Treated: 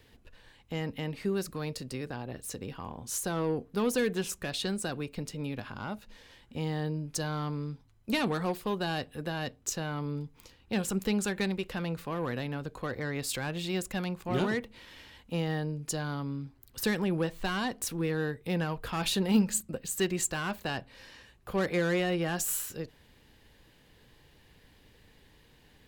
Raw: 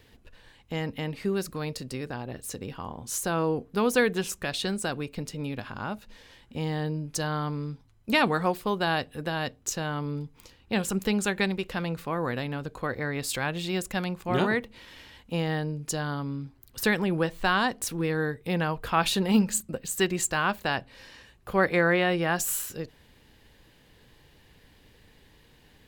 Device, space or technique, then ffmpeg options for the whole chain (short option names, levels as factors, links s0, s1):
one-band saturation: -filter_complex "[0:a]acrossover=split=480|3200[s0][s1][s2];[s1]asoftclip=type=tanh:threshold=0.0335[s3];[s0][s3][s2]amix=inputs=3:normalize=0,volume=0.75"